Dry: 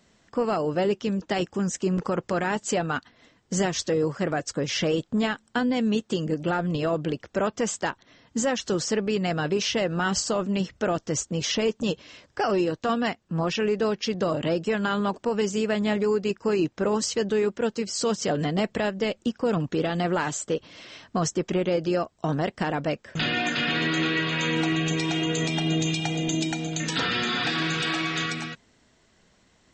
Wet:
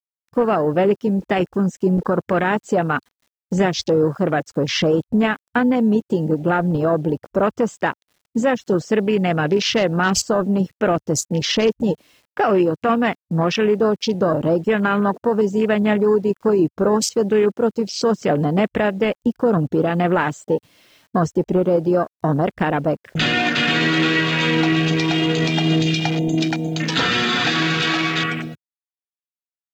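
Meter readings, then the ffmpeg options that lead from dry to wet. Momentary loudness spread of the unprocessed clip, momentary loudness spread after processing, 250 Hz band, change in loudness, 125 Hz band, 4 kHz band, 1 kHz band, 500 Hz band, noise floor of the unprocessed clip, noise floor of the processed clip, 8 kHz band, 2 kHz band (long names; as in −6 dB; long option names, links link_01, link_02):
4 LU, 5 LU, +7.5 dB, +7.0 dB, +7.5 dB, +5.5 dB, +7.5 dB, +7.5 dB, −64 dBFS, below −85 dBFS, +1.5 dB, +7.0 dB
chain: -af "acrusher=bits=7:mix=0:aa=0.000001,afwtdn=0.02,volume=7.5dB"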